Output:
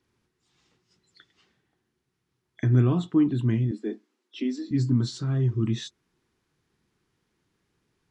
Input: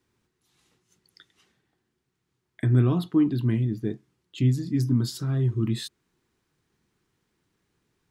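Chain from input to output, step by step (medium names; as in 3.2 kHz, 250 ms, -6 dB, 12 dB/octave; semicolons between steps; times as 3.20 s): knee-point frequency compression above 3.3 kHz 1.5:1; 3.71–4.71 s: steep high-pass 220 Hz 96 dB/octave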